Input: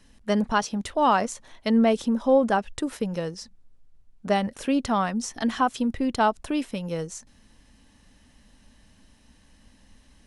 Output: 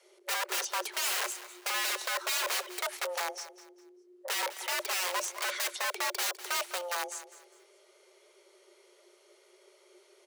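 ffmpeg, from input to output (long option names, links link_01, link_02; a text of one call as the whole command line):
ffmpeg -i in.wav -af "aeval=exprs='(mod(15*val(0)+1,2)-1)/15':channel_layout=same,bandreject=frequency=3100:width=29,afreqshift=350,highpass=frequency=690:poles=1,aecho=1:1:202|404|606:0.178|0.0533|0.016,volume=-2dB" out.wav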